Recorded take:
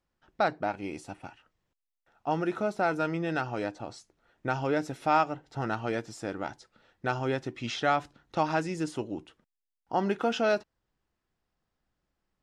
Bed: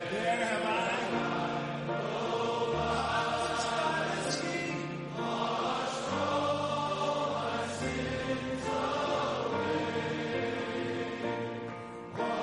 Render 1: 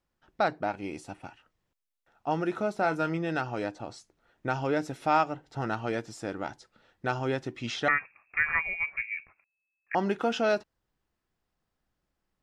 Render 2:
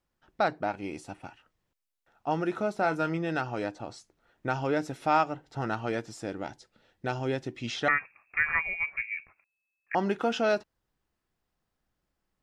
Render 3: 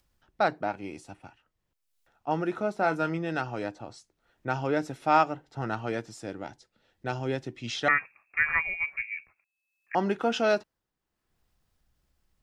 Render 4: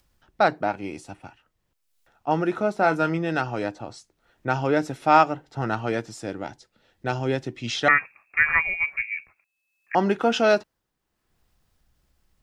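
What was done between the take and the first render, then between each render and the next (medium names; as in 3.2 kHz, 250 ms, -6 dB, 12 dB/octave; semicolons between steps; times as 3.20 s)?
2.78–3.18 s: doubling 25 ms -11.5 dB; 7.88–9.95 s: frequency inversion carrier 2.6 kHz
6.23–7.76 s: peaking EQ 1.2 kHz -6 dB 0.9 oct
upward compressor, threshold -47 dBFS; three bands expanded up and down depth 40%
trim +5.5 dB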